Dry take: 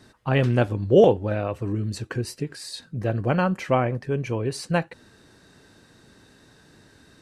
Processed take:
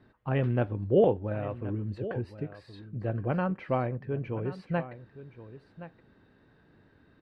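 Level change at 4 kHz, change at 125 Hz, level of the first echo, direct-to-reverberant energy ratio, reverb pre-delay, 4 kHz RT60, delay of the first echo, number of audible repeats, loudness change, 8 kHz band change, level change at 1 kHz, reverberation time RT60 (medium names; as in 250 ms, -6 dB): -16.5 dB, -6.0 dB, -14.5 dB, no reverb, no reverb, no reverb, 1071 ms, 1, -7.0 dB, under -30 dB, -7.5 dB, no reverb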